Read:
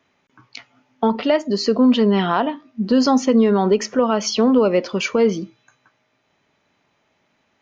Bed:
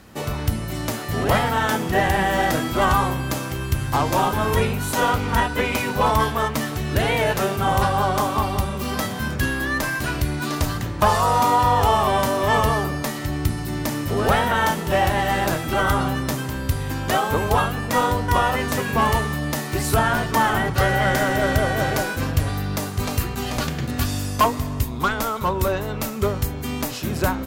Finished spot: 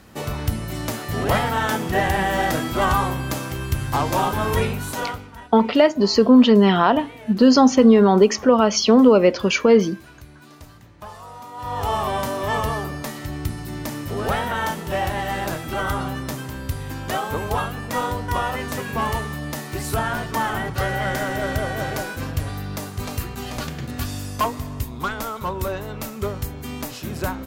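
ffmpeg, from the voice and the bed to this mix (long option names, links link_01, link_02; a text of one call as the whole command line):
ffmpeg -i stem1.wav -i stem2.wav -filter_complex "[0:a]adelay=4500,volume=2.5dB[link_01];[1:a]volume=15.5dB,afade=type=out:start_time=4.66:duration=0.65:silence=0.1,afade=type=in:start_time=11.54:duration=0.41:silence=0.149624[link_02];[link_01][link_02]amix=inputs=2:normalize=0" out.wav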